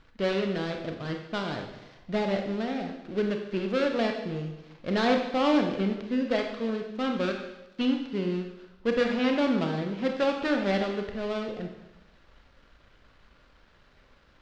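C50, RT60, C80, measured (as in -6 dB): 5.5 dB, 0.95 s, 7.5 dB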